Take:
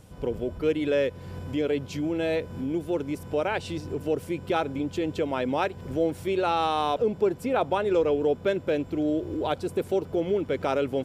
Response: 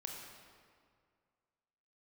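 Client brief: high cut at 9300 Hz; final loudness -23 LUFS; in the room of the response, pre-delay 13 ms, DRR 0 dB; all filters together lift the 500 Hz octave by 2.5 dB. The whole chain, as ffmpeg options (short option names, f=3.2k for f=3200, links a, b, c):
-filter_complex "[0:a]lowpass=9.3k,equalizer=f=500:t=o:g=3,asplit=2[a][b];[1:a]atrim=start_sample=2205,adelay=13[c];[b][c]afir=irnorm=-1:irlink=0,volume=1.5dB[d];[a][d]amix=inputs=2:normalize=0,volume=-0.5dB"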